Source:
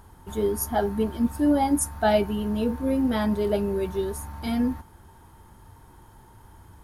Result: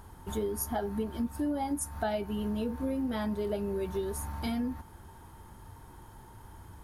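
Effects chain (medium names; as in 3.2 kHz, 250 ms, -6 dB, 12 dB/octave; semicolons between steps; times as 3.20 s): compression 5:1, threshold -30 dBFS, peak gain reduction 13 dB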